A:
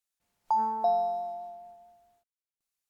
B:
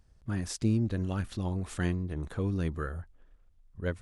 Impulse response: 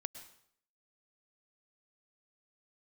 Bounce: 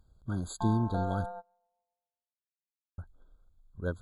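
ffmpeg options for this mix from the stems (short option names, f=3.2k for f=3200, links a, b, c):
-filter_complex "[0:a]adynamicequalizer=threshold=0.0158:dfrequency=720:dqfactor=1.8:tfrequency=720:tqfactor=1.8:attack=5:release=100:ratio=0.375:range=2:mode=boostabove:tftype=bell,aeval=exprs='(tanh(15.8*val(0)+0.6)-tanh(0.6))/15.8':c=same,tremolo=f=190:d=0.974,adelay=100,volume=-4dB[a];[1:a]volume=-1dB,asplit=3[b][c][d];[b]atrim=end=1.26,asetpts=PTS-STARTPTS,afade=t=out:st=1.256:d=0.004:c=hsin[e];[c]atrim=start=1.26:end=2.98,asetpts=PTS-STARTPTS,volume=0[f];[d]atrim=start=2.98,asetpts=PTS-STARTPTS,afade=t=in:d=0.004:c=hsin[g];[e][f][g]concat=n=3:v=0:a=1,asplit=2[h][i];[i]apad=whole_len=131889[j];[a][j]sidechaingate=range=-25dB:threshold=-53dB:ratio=16:detection=peak[k];[k][h]amix=inputs=2:normalize=0,afftfilt=real='re*eq(mod(floor(b*sr/1024/1600),2),0)':imag='im*eq(mod(floor(b*sr/1024/1600),2),0)':win_size=1024:overlap=0.75"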